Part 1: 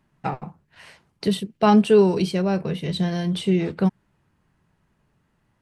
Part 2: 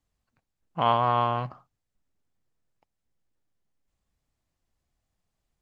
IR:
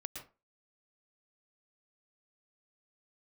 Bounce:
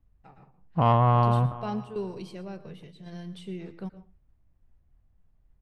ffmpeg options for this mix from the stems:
-filter_complex "[0:a]volume=-20dB,asplit=2[link_01][link_02];[link_02]volume=-4dB[link_03];[1:a]lowpass=2900,aemphasis=mode=reproduction:type=riaa,volume=0.5dB,asplit=3[link_04][link_05][link_06];[link_05]volume=-18.5dB[link_07];[link_06]apad=whole_len=247819[link_08];[link_01][link_08]sidechaingate=range=-33dB:threshold=-59dB:ratio=16:detection=peak[link_09];[2:a]atrim=start_sample=2205[link_10];[link_03][link_10]afir=irnorm=-1:irlink=0[link_11];[link_07]aecho=0:1:363|726|1089|1452:1|0.27|0.0729|0.0197[link_12];[link_09][link_04][link_11][link_12]amix=inputs=4:normalize=0,asoftclip=type=tanh:threshold=-10dB"

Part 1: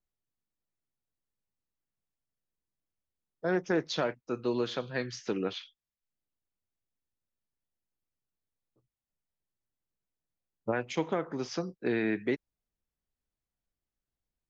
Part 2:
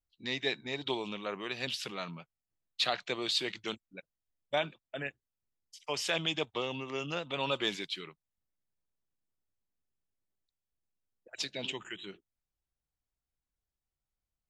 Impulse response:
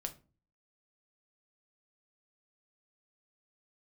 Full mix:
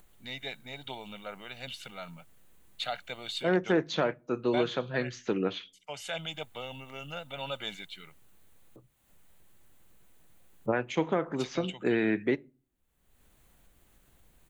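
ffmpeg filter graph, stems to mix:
-filter_complex "[0:a]acompressor=mode=upward:threshold=-43dB:ratio=2.5,volume=1dB,asplit=2[link_01][link_02];[link_02]volume=-11.5dB[link_03];[1:a]aecho=1:1:1.4:0.66,volume=-5dB[link_04];[2:a]atrim=start_sample=2205[link_05];[link_03][link_05]afir=irnorm=-1:irlink=0[link_06];[link_01][link_04][link_06]amix=inputs=3:normalize=0,equalizer=frequency=5200:width_type=o:width=0.44:gain=-11"

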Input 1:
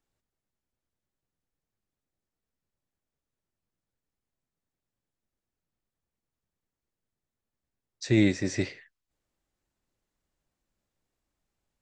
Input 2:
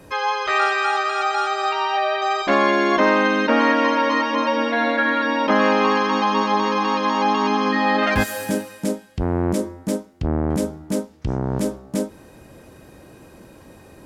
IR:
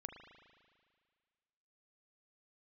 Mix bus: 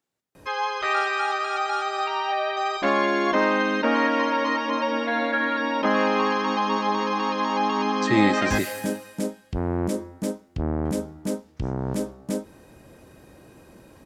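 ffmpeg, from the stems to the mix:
-filter_complex "[0:a]highpass=160,volume=2.5dB[link_01];[1:a]adelay=350,volume=-4.5dB[link_02];[link_01][link_02]amix=inputs=2:normalize=0"

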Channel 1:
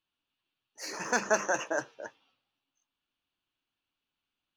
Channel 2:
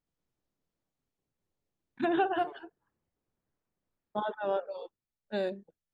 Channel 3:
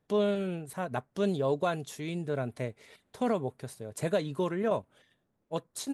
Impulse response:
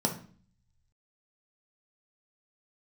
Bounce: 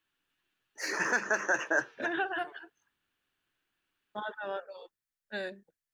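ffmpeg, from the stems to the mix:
-filter_complex "[0:a]equalizer=frequency=370:width_type=o:width=0.67:gain=6,volume=0.5dB[link_01];[1:a]highshelf=frequency=3000:gain=11.5,volume=-8dB[link_02];[link_01][link_02]amix=inputs=2:normalize=0,equalizer=frequency=1700:width=1.8:gain=11.5,alimiter=limit=-16.5dB:level=0:latency=1:release=379"

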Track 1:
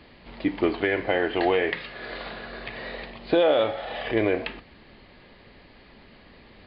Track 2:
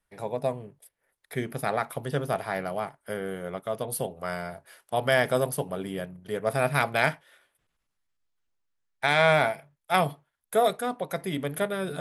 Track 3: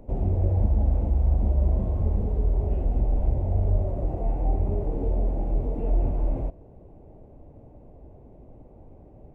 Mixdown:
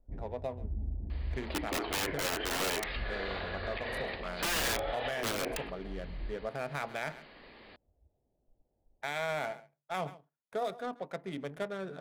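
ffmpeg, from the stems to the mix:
ffmpeg -i stem1.wav -i stem2.wav -i stem3.wav -filter_complex "[0:a]bass=frequency=250:gain=-10,treble=frequency=4000:gain=-2,aeval=exprs='(mod(10*val(0)+1,2)-1)/10':channel_layout=same,adelay=1100,volume=-1dB[link_01];[1:a]highpass=150,adynamicsmooth=sensitivity=6:basefreq=1200,volume=-8dB,asplit=3[link_02][link_03][link_04];[link_03]volume=-21dB[link_05];[2:a]afwtdn=0.0562,lowpass=frequency=820:width_type=q:width=1.6,volume=-14.5dB[link_06];[link_04]apad=whole_len=412254[link_07];[link_06][link_07]sidechaincompress=threshold=-46dB:ratio=8:attack=16:release=166[link_08];[link_05]aecho=0:1:135:1[link_09];[link_01][link_02][link_08][link_09]amix=inputs=4:normalize=0,alimiter=level_in=1.5dB:limit=-24dB:level=0:latency=1:release=65,volume=-1.5dB" out.wav

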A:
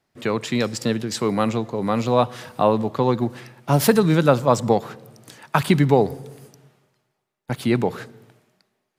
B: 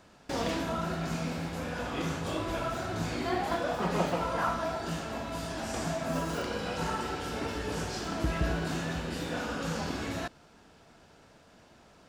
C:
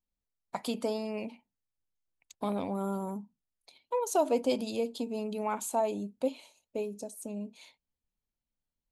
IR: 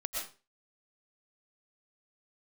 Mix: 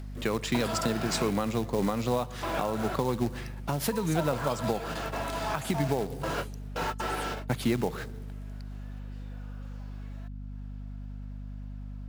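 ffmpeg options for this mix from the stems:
-filter_complex "[0:a]volume=-1.5dB[link_01];[1:a]asplit=2[link_02][link_03];[link_03]highpass=frequency=720:poles=1,volume=21dB,asoftclip=type=tanh:threshold=-14.5dB[link_04];[link_02][link_04]amix=inputs=2:normalize=0,lowpass=frequency=2300:poles=1,volume=-6dB,volume=-6dB,asplit=3[link_05][link_06][link_07];[link_05]atrim=end=2.95,asetpts=PTS-STARTPTS,afade=type=out:start_time=2.946:duration=0.004:curve=hsin[link_08];[link_06]atrim=start=2.95:end=4.19,asetpts=PTS-STARTPTS,volume=0[link_09];[link_07]atrim=start=4.19,asetpts=PTS-STARTPTS,afade=type=in:duration=0.004:curve=hsin[link_10];[link_08][link_09][link_10]concat=n=3:v=0:a=1[link_11];[2:a]highpass=frequency=610:width=0.5412,highpass=frequency=610:width=1.3066,volume=-2dB,asplit=2[link_12][link_13];[link_13]apad=whole_len=532935[link_14];[link_11][link_14]sidechaingate=range=-36dB:threshold=-51dB:ratio=16:detection=peak[link_15];[link_01][link_15]amix=inputs=2:normalize=0,acrusher=bits=4:mode=log:mix=0:aa=0.000001,acompressor=threshold=-21dB:ratio=6,volume=0dB[link_16];[link_12][link_16]amix=inputs=2:normalize=0,acompressor=mode=upward:threshold=-46dB:ratio=2.5,aeval=exprs='val(0)+0.0126*(sin(2*PI*50*n/s)+sin(2*PI*2*50*n/s)/2+sin(2*PI*3*50*n/s)/3+sin(2*PI*4*50*n/s)/4+sin(2*PI*5*50*n/s)/5)':channel_layout=same,alimiter=limit=-16dB:level=0:latency=1:release=415"

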